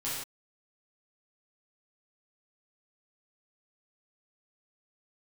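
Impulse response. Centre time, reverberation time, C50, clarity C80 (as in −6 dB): 64 ms, non-exponential decay, −0.5 dB, 3.0 dB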